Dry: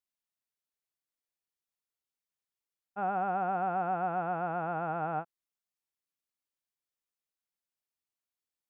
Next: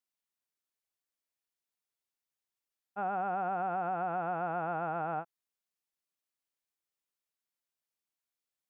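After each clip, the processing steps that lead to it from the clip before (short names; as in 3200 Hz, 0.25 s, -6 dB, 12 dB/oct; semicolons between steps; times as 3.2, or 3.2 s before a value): low shelf 150 Hz -5.5 dB; limiter -24.5 dBFS, peak gain reduction 3 dB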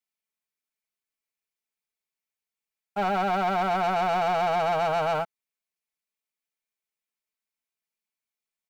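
bell 2300 Hz +8 dB 0.32 oct; comb 4.6 ms, depth 71%; sample leveller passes 3; gain +2.5 dB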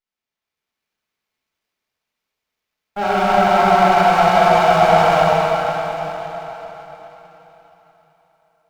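AGC gain up to 6 dB; reverb RT60 4.0 s, pre-delay 8 ms, DRR -9 dB; running maximum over 5 samples; gain -3 dB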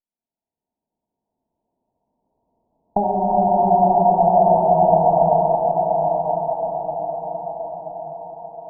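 recorder AGC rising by 8.4 dB/s; rippled Chebyshev low-pass 970 Hz, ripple 6 dB; thinning echo 0.979 s, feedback 43%, high-pass 460 Hz, level -4.5 dB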